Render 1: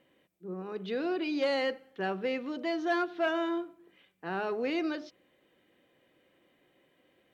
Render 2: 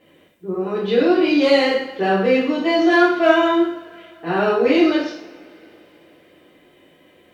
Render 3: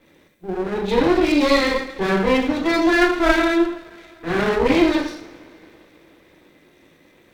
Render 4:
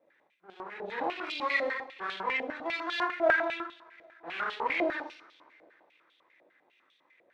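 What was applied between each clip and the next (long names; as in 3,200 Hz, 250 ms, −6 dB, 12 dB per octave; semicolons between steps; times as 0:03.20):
parametric band 79 Hz +2.5 dB 1.4 octaves; coupled-rooms reverb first 0.59 s, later 3.6 s, from −26 dB, DRR −9 dB; level +5.5 dB
lower of the sound and its delayed copy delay 0.5 ms
band-pass on a step sequencer 10 Hz 630–3,400 Hz; level −2 dB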